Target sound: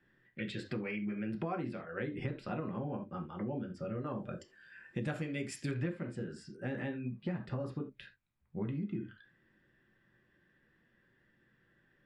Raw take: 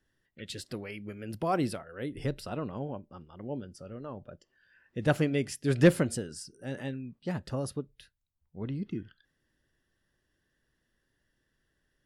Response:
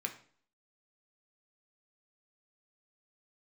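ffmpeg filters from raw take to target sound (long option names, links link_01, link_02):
-filter_complex "[1:a]atrim=start_sample=2205,atrim=end_sample=3969[link_01];[0:a][link_01]afir=irnorm=-1:irlink=0,acompressor=threshold=-42dB:ratio=10,asetnsamples=nb_out_samples=441:pad=0,asendcmd='4.07 lowpass f 7900;5.71 lowpass f 2600',lowpass=2700,volume=8dB"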